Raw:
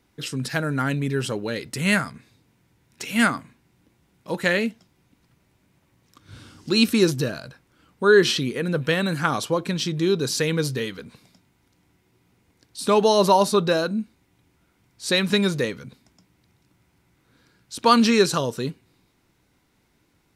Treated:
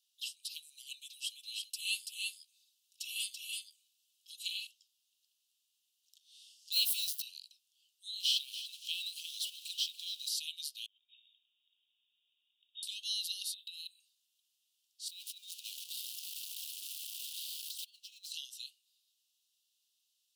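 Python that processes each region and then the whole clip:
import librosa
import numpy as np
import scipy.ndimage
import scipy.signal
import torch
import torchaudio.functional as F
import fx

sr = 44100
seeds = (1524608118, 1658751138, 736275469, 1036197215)

y = fx.chain(x, sr, fx.comb(ms=3.4, depth=0.67),
    fx.echo_single(ms=333, db=-3.5), at=(0.91, 4.67))
y = fx.chain(y, sr, fx.crossing_spikes(level_db=-22.5),
    fx.doubler(ms=16.0, db=-8), at=(6.72, 7.22))
y = fx.chain(y, sr, fx.zero_step(step_db=-29.5),
    fx.high_shelf(hz=12000.0, db=-5.5),
    fx.echo_feedback(ms=285, feedback_pct=32, wet_db=-13.5), at=(8.2, 10.29))
y = fx.chain(y, sr, fx.brickwall_lowpass(high_hz=3800.0),
    fx.over_compress(threshold_db=-45.0, ratio=-0.5), at=(10.86, 12.83))
y = fx.chain(y, sr, fx.highpass(hz=720.0, slope=6),
    fx.over_compress(threshold_db=-29.0, ratio=-1.0),
    fx.fixed_phaser(hz=1200.0, stages=8), at=(13.54, 14.0))
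y = fx.chain(y, sr, fx.crossing_spikes(level_db=-16.0),
    fx.over_compress(threshold_db=-24.0, ratio=-0.5),
    fx.riaa(side='playback'), at=(15.08, 18.32))
y = scipy.signal.sosfilt(scipy.signal.butter(16, 2800.0, 'highpass', fs=sr, output='sos'), y)
y = fx.dynamic_eq(y, sr, hz=6600.0, q=1.5, threshold_db=-45.0, ratio=4.0, max_db=-8)
y = F.gain(torch.from_numpy(y), -5.0).numpy()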